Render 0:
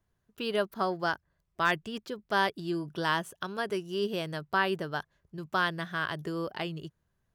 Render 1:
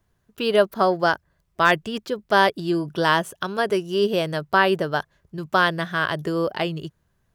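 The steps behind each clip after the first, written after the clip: dynamic bell 560 Hz, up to +5 dB, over -42 dBFS, Q 1.8; trim +8.5 dB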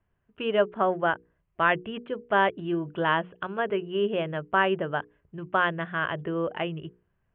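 steep low-pass 3.1 kHz 72 dB/octave; hum notches 60/120/180/240/300/360/420/480 Hz; trim -5 dB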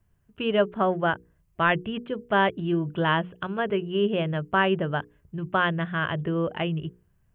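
tone controls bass +9 dB, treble +12 dB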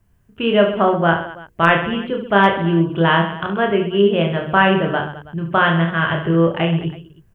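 reverse bouncing-ball echo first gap 30 ms, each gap 1.4×, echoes 5; hard clipper -8 dBFS, distortion -46 dB; trim +6.5 dB

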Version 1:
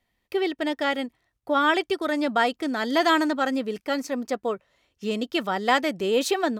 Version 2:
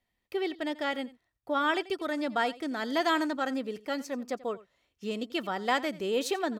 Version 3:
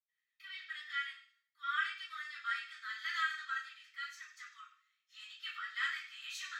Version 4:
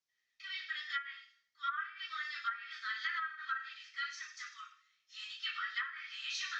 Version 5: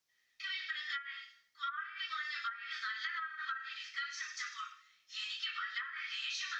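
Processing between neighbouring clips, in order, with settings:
delay 87 ms -19 dB; trim -6.5 dB
steep high-pass 1.2 kHz 96 dB/octave; reverberation RT60 0.45 s, pre-delay 77 ms; trim +12.5 dB
low-pass that closes with the level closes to 920 Hz, closed at -33 dBFS; resonant high shelf 7.9 kHz -13 dB, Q 3; trim +3.5 dB
compression 6:1, threshold -44 dBFS, peak gain reduction 12.5 dB; trim +7 dB

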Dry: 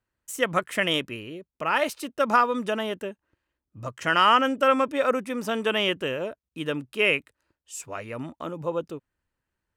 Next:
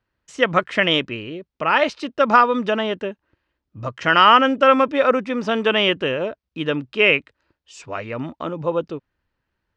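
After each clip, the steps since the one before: low-pass 5.1 kHz 24 dB/octave; trim +6.5 dB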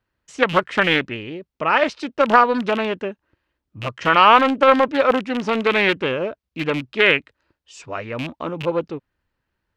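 rattle on loud lows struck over -29 dBFS, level -18 dBFS; loudspeaker Doppler distortion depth 0.3 ms

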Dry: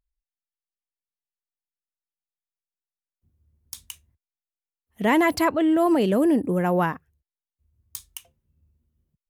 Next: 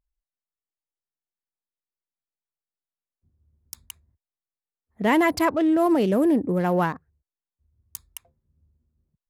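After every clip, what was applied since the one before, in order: local Wiener filter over 15 samples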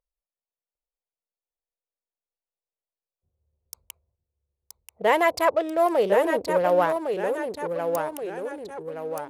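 local Wiener filter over 25 samples; resonant low shelf 370 Hz -9.5 dB, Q 3; ever faster or slower copies 753 ms, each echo -1 st, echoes 3, each echo -6 dB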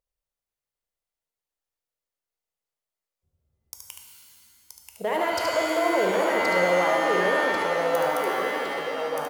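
peak limiter -18.5 dBFS, peak gain reduction 11.5 dB; delay 73 ms -5.5 dB; pitch-shifted reverb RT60 2.1 s, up +7 st, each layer -2 dB, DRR 3 dB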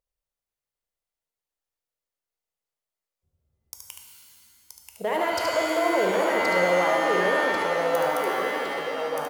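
no audible change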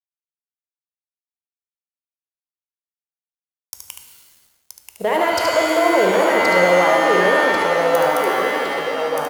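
crossover distortion -55 dBFS; trim +7.5 dB

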